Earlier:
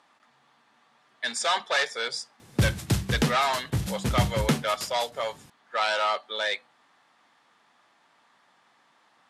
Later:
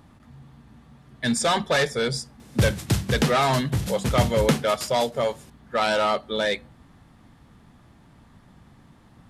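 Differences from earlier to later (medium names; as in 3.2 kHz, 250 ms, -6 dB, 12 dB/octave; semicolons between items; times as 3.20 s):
speech: remove band-pass 790–7400 Hz; reverb: on, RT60 0.60 s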